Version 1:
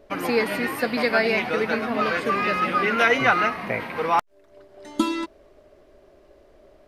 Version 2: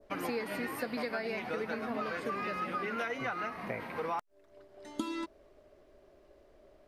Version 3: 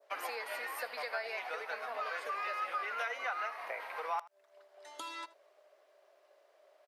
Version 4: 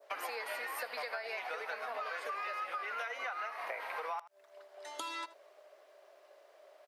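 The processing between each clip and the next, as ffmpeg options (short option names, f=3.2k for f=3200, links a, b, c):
-af "acompressor=threshold=-24dB:ratio=6,adynamicequalizer=threshold=0.00631:dfrequency=2900:dqfactor=0.98:tfrequency=2900:tqfactor=0.98:attack=5:release=100:ratio=0.375:range=2:mode=cutabove:tftype=bell,volume=-7.5dB"
-af "highpass=f=590:w=0.5412,highpass=f=590:w=1.3066,aecho=1:1:80:0.1"
-af "acompressor=threshold=-43dB:ratio=4,volume=5.5dB"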